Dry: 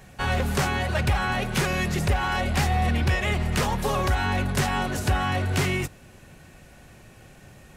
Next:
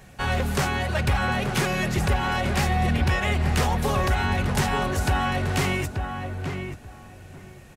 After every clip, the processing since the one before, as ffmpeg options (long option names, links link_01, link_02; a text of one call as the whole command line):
ffmpeg -i in.wav -filter_complex "[0:a]asplit=2[link_01][link_02];[link_02]adelay=883,lowpass=frequency=1700:poles=1,volume=-5.5dB,asplit=2[link_03][link_04];[link_04]adelay=883,lowpass=frequency=1700:poles=1,volume=0.18,asplit=2[link_05][link_06];[link_06]adelay=883,lowpass=frequency=1700:poles=1,volume=0.18[link_07];[link_01][link_03][link_05][link_07]amix=inputs=4:normalize=0" out.wav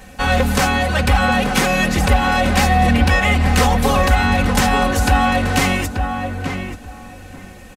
ffmpeg -i in.wav -af "aecho=1:1:3.9:0.74,volume=7dB" out.wav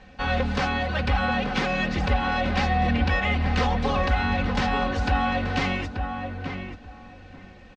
ffmpeg -i in.wav -af "lowpass=frequency=4800:width=0.5412,lowpass=frequency=4800:width=1.3066,volume=-8.5dB" out.wav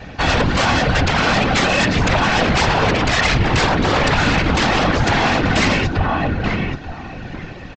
ffmpeg -i in.wav -af "equalizer=frequency=650:width=7.7:gain=-8,aresample=16000,aeval=exprs='0.282*sin(PI/2*3.98*val(0)/0.282)':channel_layout=same,aresample=44100,afftfilt=real='hypot(re,im)*cos(2*PI*random(0))':imag='hypot(re,im)*sin(2*PI*random(1))':win_size=512:overlap=0.75,volume=4.5dB" out.wav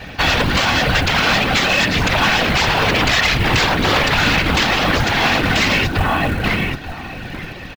ffmpeg -i in.wav -af "equalizer=frequency=3200:width=0.58:gain=7,alimiter=limit=-5dB:level=0:latency=1:release=216,acrusher=bits=6:mode=log:mix=0:aa=0.000001" out.wav